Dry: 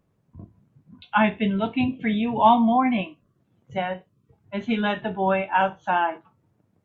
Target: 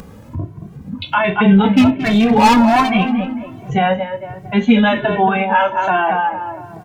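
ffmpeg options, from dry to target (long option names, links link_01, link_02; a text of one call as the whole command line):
ffmpeg -i in.wav -filter_complex "[0:a]asettb=1/sr,asplit=3[link_01][link_02][link_03];[link_01]atrim=end=5.174[link_04];[link_02]atrim=start=5.17:end=5.76,asetpts=PTS-STARTPTS,afade=type=in:duration=0.004:curve=qsin,afade=type=out:start_time=0.586:duration=0.004:curve=qsin,lowshelf=frequency=490:gain=-10[link_05];[link_03]atrim=start=5.756[link_06];[link_04][link_05]acrossfade=duration=0.004:curve1=hsin:curve2=qsin[link_07];[link_07][link_06]acrossfade=duration=0.004:curve1=qsin:curve2=hsin,asplit=2[link_08][link_09];[link_09]acompressor=mode=upward:threshold=-24dB:ratio=2.5,volume=-1.5dB[link_10];[link_08][link_10]amix=inputs=2:normalize=0,asplit=3[link_11][link_12][link_13];[link_11]afade=type=out:start_time=1.73:duration=0.02[link_14];[link_12]asoftclip=type=hard:threshold=-16.5dB,afade=type=in:start_time=1.73:duration=0.02,afade=type=out:start_time=2.9:duration=0.02[link_15];[link_13]afade=type=in:start_time=2.9:duration=0.02[link_16];[link_14][link_15][link_16]amix=inputs=3:normalize=0,asplit=2[link_17][link_18];[link_18]adelay=225,lowpass=frequency=1800:poles=1,volume=-8.5dB,asplit=2[link_19][link_20];[link_20]adelay=225,lowpass=frequency=1800:poles=1,volume=0.46,asplit=2[link_21][link_22];[link_22]adelay=225,lowpass=frequency=1800:poles=1,volume=0.46,asplit=2[link_23][link_24];[link_24]adelay=225,lowpass=frequency=1800:poles=1,volume=0.46,asplit=2[link_25][link_26];[link_26]adelay=225,lowpass=frequency=1800:poles=1,volume=0.46[link_27];[link_17][link_19][link_21][link_23][link_25][link_27]amix=inputs=6:normalize=0,alimiter=level_in=11.5dB:limit=-1dB:release=50:level=0:latency=1,asplit=2[link_28][link_29];[link_29]adelay=2.1,afreqshift=1.3[link_30];[link_28][link_30]amix=inputs=2:normalize=1,volume=-1dB" out.wav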